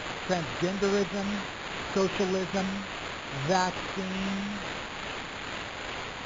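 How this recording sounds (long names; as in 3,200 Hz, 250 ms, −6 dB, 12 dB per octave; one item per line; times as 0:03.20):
a quantiser's noise floor 6 bits, dither triangular
tremolo triangle 2.4 Hz, depth 35%
aliases and images of a low sample rate 5,600 Hz, jitter 0%
MP2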